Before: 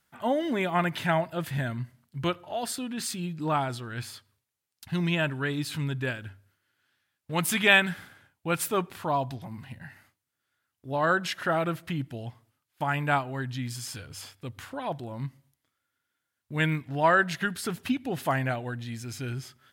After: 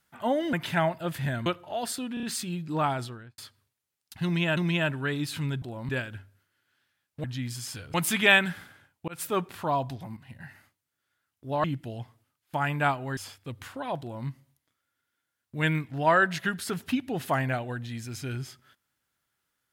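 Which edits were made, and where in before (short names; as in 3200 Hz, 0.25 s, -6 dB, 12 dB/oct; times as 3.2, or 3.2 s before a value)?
0.53–0.85 cut
1.78–2.26 cut
2.94 stutter 0.03 s, 4 plays
3.73–4.09 studio fade out
4.95–5.28 loop, 2 plays
8.49–8.85 fade in equal-power
9.58–9.85 fade in, from -12 dB
11.05–11.91 cut
13.44–14.14 move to 7.35
14.97–15.24 copy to 6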